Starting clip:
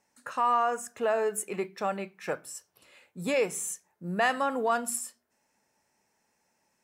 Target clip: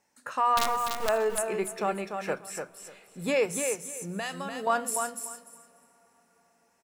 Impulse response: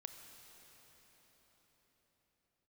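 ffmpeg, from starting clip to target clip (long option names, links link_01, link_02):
-filter_complex "[0:a]bandreject=frequency=60:width_type=h:width=6,bandreject=frequency=120:width_type=h:width=6,bandreject=frequency=180:width_type=h:width=6,bandreject=frequency=240:width_type=h:width=6,asettb=1/sr,asplit=3[link_01][link_02][link_03];[link_01]atrim=end=0.574[link_04];[link_02]atrim=start=0.57:end=1.09,asetpts=PTS-STARTPTS,afade=type=in:duration=0.004:curve=qsin,afade=type=out:start_time=0.516:duration=0.004:curve=qsin,acrusher=bits=4:dc=4:mix=0:aa=0.000001[link_05];[link_03]atrim=start=1.086[link_06];[link_04][link_05]acrossfade=duration=0.004:curve1=hsin:curve2=qsin[link_07];[link_07][link_06]acrossfade=duration=0.004:curve1=qsin:curve2=hsin,asettb=1/sr,asplit=3[link_08][link_09][link_10];[link_08]atrim=end=3.454[link_11];[link_09]atrim=start=3.45:end=4.67,asetpts=PTS-STARTPTS,afade=type=in:duration=0.004:curve=qsin,afade=type=out:start_time=1.216:duration=0.004:curve=qsin,acrossover=split=150|3000[link_12][link_13][link_14];[link_13]acompressor=threshold=-36dB:ratio=6[link_15];[link_12][link_15][link_14]amix=inputs=3:normalize=0[link_16];[link_10]atrim=start=4.666[link_17];[link_11][link_16]acrossfade=duration=0.004:curve1=hsin:curve2=qsin[link_18];[link_18][link_17]acrossfade=duration=0.004:curve1=qsin:curve2=hsin,aecho=1:1:294|588|882:0.501|0.0902|0.0162,asplit=2[link_19][link_20];[1:a]atrim=start_sample=2205[link_21];[link_20][link_21]afir=irnorm=-1:irlink=0,volume=-12dB[link_22];[link_19][link_22]amix=inputs=2:normalize=0"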